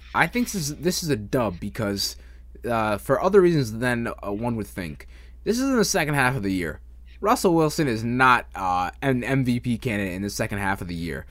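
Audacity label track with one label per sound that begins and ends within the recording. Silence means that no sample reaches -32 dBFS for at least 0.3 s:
2.650000	5.010000	sound
5.460000	6.750000	sound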